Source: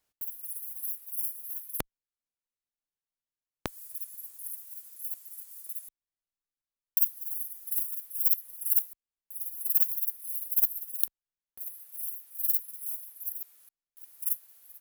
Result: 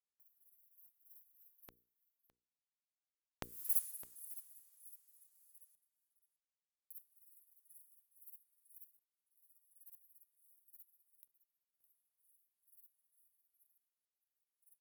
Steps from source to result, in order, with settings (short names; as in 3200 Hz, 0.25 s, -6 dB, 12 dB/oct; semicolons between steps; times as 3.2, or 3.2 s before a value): Doppler pass-by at 3.74, 22 m/s, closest 1.1 m; notches 60/120/180/240/300/360/420/480 Hz; on a send: echo 0.611 s -17 dB; on the sum: gain +6.5 dB